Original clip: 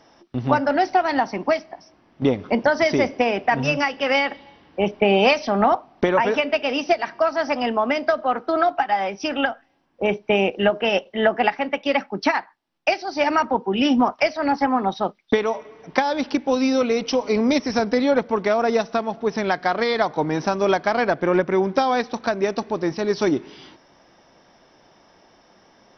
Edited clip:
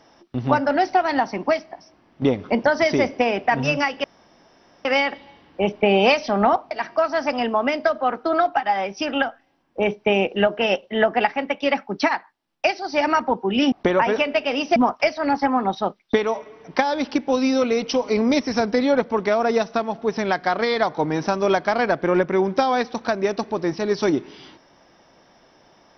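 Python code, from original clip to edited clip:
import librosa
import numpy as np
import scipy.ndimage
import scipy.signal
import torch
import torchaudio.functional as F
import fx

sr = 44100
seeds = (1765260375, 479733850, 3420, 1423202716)

y = fx.edit(x, sr, fx.insert_room_tone(at_s=4.04, length_s=0.81),
    fx.move(start_s=5.9, length_s=1.04, to_s=13.95), tone=tone)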